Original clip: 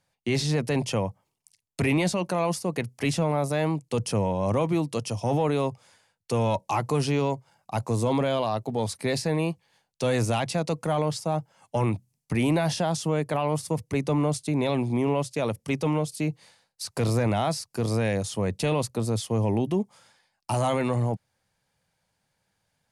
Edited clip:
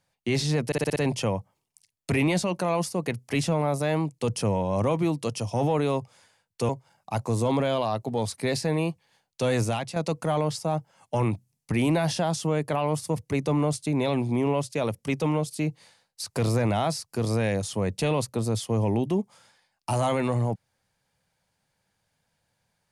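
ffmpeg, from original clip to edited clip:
-filter_complex "[0:a]asplit=8[s0][s1][s2][s3][s4][s5][s6][s7];[s0]atrim=end=0.722[s8];[s1]atrim=start=0.658:end=0.722[s9];[s2]atrim=start=0.658:end=0.722[s10];[s3]atrim=start=0.658:end=0.722[s11];[s4]atrim=start=0.658:end=0.722[s12];[s5]atrim=start=0.658:end=6.392[s13];[s6]atrim=start=7.298:end=10.57,asetpts=PTS-STARTPTS,afade=t=out:st=2.922:d=0.35:silence=0.375837[s14];[s7]atrim=start=10.57,asetpts=PTS-STARTPTS,afade=t=in:d=0.004:c=hsin:silence=0.375837[s15];[s8][s9]acrossfade=d=0.004:c1=hsin:c2=hsin[s16];[s16][s10]acrossfade=d=0.004:c1=hsin:c2=hsin[s17];[s17][s11]acrossfade=d=0.004:c1=hsin:c2=hsin[s18];[s18][s12]acrossfade=d=0.004:c1=hsin:c2=hsin[s19];[s19][s13]acrossfade=d=0.004:c1=hsin:c2=hsin[s20];[s14][s15]concat=n=2:v=0:a=1[s21];[s20][s21]acrossfade=d=0.004:c1=hsin:c2=hsin"

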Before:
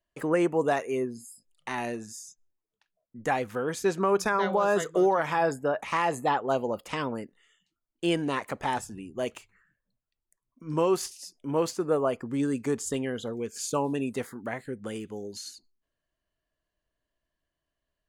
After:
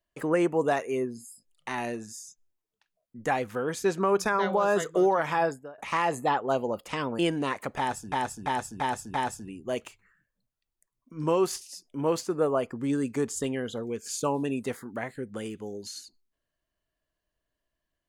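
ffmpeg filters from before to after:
-filter_complex "[0:a]asplit=7[s0][s1][s2][s3][s4][s5][s6];[s0]atrim=end=5.78,asetpts=PTS-STARTPTS,afade=t=out:st=5.43:d=0.35:c=qua:silence=0.0891251[s7];[s1]atrim=start=5.78:end=7.192,asetpts=PTS-STARTPTS,afade=t=in:d=0.004:c=hsin:silence=0.0891251[s8];[s2]atrim=start=8.048:end=8.982[s9];[s3]atrim=start=8.638:end=8.982[s10];[s4]atrim=start=8.638:end=8.982[s11];[s5]atrim=start=8.638:end=8.982[s12];[s6]atrim=start=8.638[s13];[s7][s8]concat=n=2:v=0:a=1[s14];[s14][s9]acrossfade=d=0.004:c1=hsin:c2=hsin[s15];[s15][s10]acrossfade=d=0.004:c1=hsin:c2=hsin[s16];[s16][s11]acrossfade=d=0.004:c1=hsin:c2=hsin[s17];[s17][s12]acrossfade=d=0.004:c1=hsin:c2=hsin[s18];[s18][s13]acrossfade=d=0.004:c1=hsin:c2=hsin"

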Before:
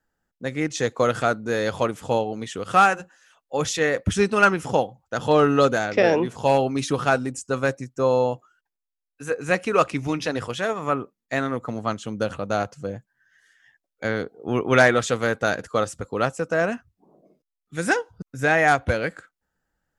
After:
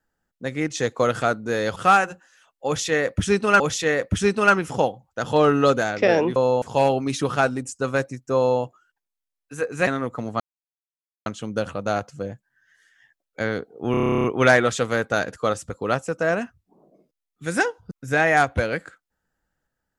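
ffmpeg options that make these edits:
-filter_complex "[0:a]asplit=18[s0][s1][s2][s3][s4][s5][s6][s7][s8][s9][s10][s11][s12][s13][s14][s15][s16][s17];[s0]atrim=end=1.762[s18];[s1]atrim=start=2.648:end=4.492[s19];[s2]atrim=start=3.548:end=6.312[s20];[s3]atrim=start=8.038:end=8.302[s21];[s4]atrim=start=6.308:end=9.562[s22];[s5]atrim=start=11.368:end=11.9,asetpts=PTS-STARTPTS,afade=t=out:st=0.528:d=0.004:c=hsin,apad=pad_dur=0.86[s23];[s6]atrim=start=11.9:end=14.582,asetpts=PTS-STARTPTS,afade=t=in:d=0.004:c=hsin[s24];[s7]atrim=start=14.548:end=14.582[s25];[s8]atrim=start=14.548:end=14.582[s26];[s9]atrim=start=14.548:end=14.582[s27];[s10]atrim=start=14.548:end=14.582[s28];[s11]atrim=start=14.548:end=14.582[s29];[s12]atrim=start=14.548:end=14.582[s30];[s13]atrim=start=14.548:end=14.582[s31];[s14]atrim=start=14.548:end=14.582[s32];[s15]atrim=start=14.548:end=14.582[s33];[s16]atrim=start=14.548:end=14.582[s34];[s17]atrim=start=14.548[s35];[s18][s19]acrossfade=d=0.004:c1=hsin:c2=hsin[s36];[s36][s20]acrossfade=d=0.004:c1=hsin:c2=hsin[s37];[s37][s21]acrossfade=d=0.004:c1=hsin:c2=hsin[s38];[s38][s22]acrossfade=d=0.004:c1=hsin:c2=hsin[s39];[s23][s24]concat=n=2:v=0:a=1[s40];[s39][s40]acrossfade=d=0.004:c1=hsin:c2=hsin[s41];[s41][s25]acrossfade=d=0.004:c1=hsin:c2=hsin[s42];[s42][s26]acrossfade=d=0.004:c1=hsin:c2=hsin[s43];[s43][s27]acrossfade=d=0.004:c1=hsin:c2=hsin[s44];[s44][s28]acrossfade=d=0.004:c1=hsin:c2=hsin[s45];[s45][s29]acrossfade=d=0.004:c1=hsin:c2=hsin[s46];[s46][s30]acrossfade=d=0.004:c1=hsin:c2=hsin[s47];[s47][s31]acrossfade=d=0.004:c1=hsin:c2=hsin[s48];[s48][s32]acrossfade=d=0.004:c1=hsin:c2=hsin[s49];[s49][s33]acrossfade=d=0.004:c1=hsin:c2=hsin[s50];[s50][s34]acrossfade=d=0.004:c1=hsin:c2=hsin[s51];[s51][s35]acrossfade=d=0.004:c1=hsin:c2=hsin"

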